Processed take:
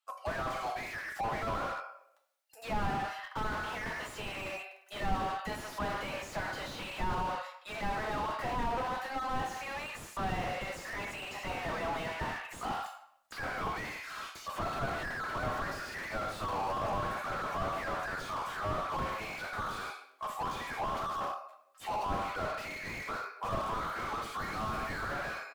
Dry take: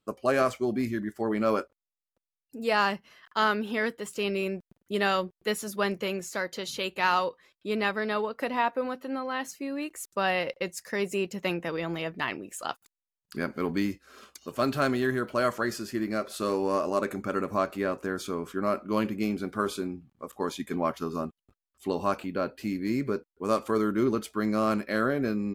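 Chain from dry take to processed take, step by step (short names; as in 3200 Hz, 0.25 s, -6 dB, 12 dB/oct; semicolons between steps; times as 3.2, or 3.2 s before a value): elliptic high-pass 730 Hz, stop band 80 dB; 12.22–12.7 compressor 6:1, threshold -38 dBFS, peak gain reduction 11.5 dB; 24.37–25.11 tilt +4 dB/oct; AGC gain up to 16 dB; flange 1.8 Hz, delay 3.2 ms, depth 1.7 ms, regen +39%; doubler 13 ms -14 dB; reverb RT60 0.75 s, pre-delay 6 ms, DRR 3.5 dB; slew limiter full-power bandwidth 21 Hz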